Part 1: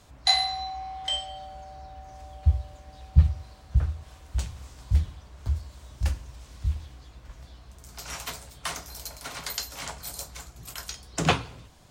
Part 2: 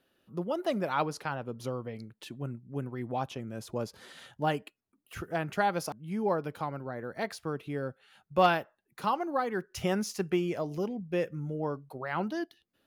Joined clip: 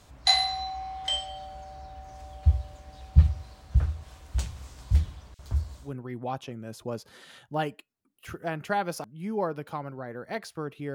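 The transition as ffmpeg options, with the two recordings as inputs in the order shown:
ffmpeg -i cue0.wav -i cue1.wav -filter_complex "[0:a]asettb=1/sr,asplit=3[link_01][link_02][link_03];[link_01]atrim=end=5.344[link_04];[link_02]atrim=start=5.34:end=5.95,asetpts=PTS-STARTPTS,afade=type=in:duration=0.004:curve=qsin,afade=type=out:start_time=0.606:duration=0.004:curve=qsin,acrossover=split=2500[link_05][link_06];[link_05]adelay=50[link_07];[link_07][link_06]amix=inputs=2:normalize=0,atrim=end_sample=26901[link_08];[link_03]atrim=start=5.946[link_09];[link_04][link_08]acrossfade=duration=0.004:curve1=hsin:curve2=qsin[link_10];[link_10][link_09]acrossfade=duration=0.004:curve1=qsin:curve2=hsin,apad=whole_dur=10.94,atrim=end=10.94,atrim=end=5.95,asetpts=PTS-STARTPTS[link_11];[1:a]atrim=start=2.65:end=7.82,asetpts=PTS-STARTPTS[link_12];[link_11][link_12]acrossfade=duration=0.18:curve1=tri:curve2=tri" out.wav

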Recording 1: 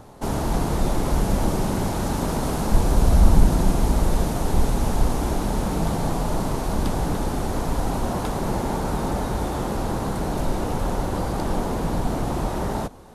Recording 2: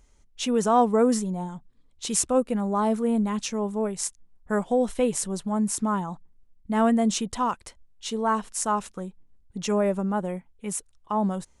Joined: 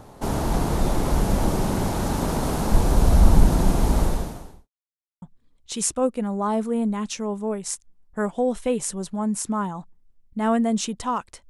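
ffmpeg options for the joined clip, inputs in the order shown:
ffmpeg -i cue0.wav -i cue1.wav -filter_complex "[0:a]apad=whole_dur=11.49,atrim=end=11.49,asplit=2[link_01][link_02];[link_01]atrim=end=4.69,asetpts=PTS-STARTPTS,afade=type=out:start_time=4.02:duration=0.67:curve=qua[link_03];[link_02]atrim=start=4.69:end=5.22,asetpts=PTS-STARTPTS,volume=0[link_04];[1:a]atrim=start=1.55:end=7.82,asetpts=PTS-STARTPTS,afade=type=in:duration=0.004:curve=hsin[link_05];[link_03][link_04][link_05]concat=n=3:v=0:a=1" out.wav

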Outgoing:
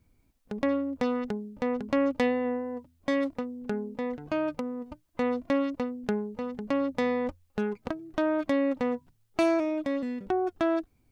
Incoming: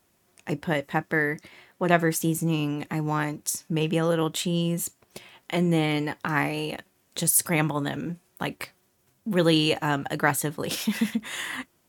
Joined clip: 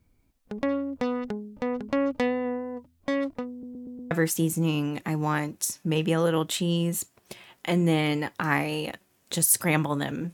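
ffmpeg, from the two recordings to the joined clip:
ffmpeg -i cue0.wav -i cue1.wav -filter_complex "[0:a]apad=whole_dur=10.33,atrim=end=10.33,asplit=5[link_01][link_02][link_03][link_04][link_05];[link_01]atrim=end=3.632[link_06];[link_02]atrim=start=3.508:end=3.632[link_07];[link_03]atrim=start=3.508:end=3.632[link_08];[link_04]atrim=start=3.508:end=3.632[link_09];[link_05]atrim=start=3.508:end=3.632[link_10];[1:a]atrim=start=1.958:end=8.18[link_11];[link_06][link_07]acrossfade=duration=0.004:curve1=hsin:curve2=hsin[link_12];[link_12][link_08]acrossfade=duration=0.004:curve1=hsin:curve2=hsin[link_13];[link_13][link_09]acrossfade=duration=0.004:curve1=hsin:curve2=hsin[link_14];[link_14][link_10]acrossfade=duration=0.004:curve1=hsin:curve2=hsin[link_15];[link_15][link_11]acrossfade=duration=0.004:curve1=hsin:curve2=hsin" out.wav

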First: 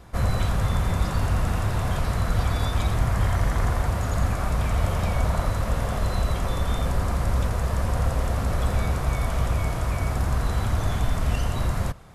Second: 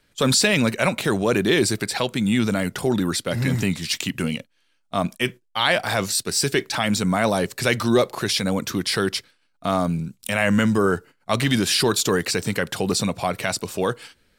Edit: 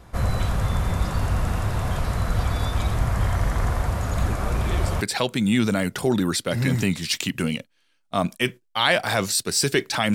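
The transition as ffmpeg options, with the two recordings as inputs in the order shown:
ffmpeg -i cue0.wav -i cue1.wav -filter_complex "[1:a]asplit=2[link_01][link_02];[0:a]apad=whole_dur=10.14,atrim=end=10.14,atrim=end=5.012[link_03];[link_02]atrim=start=1.808:end=6.94[link_04];[link_01]atrim=start=0.89:end=1.81,asetpts=PTS-STARTPTS,volume=-16dB,afade=type=in:duration=0.004:curve=hsin,afade=type=out:start_time=0.916:duration=0.004:curve=hsin,adelay=180369S[link_05];[link_03][link_04]acrossfade=duration=0.004:curve1=hsin:curve2=hsin[link_06];[link_06][link_05]amix=inputs=2:normalize=0" out.wav

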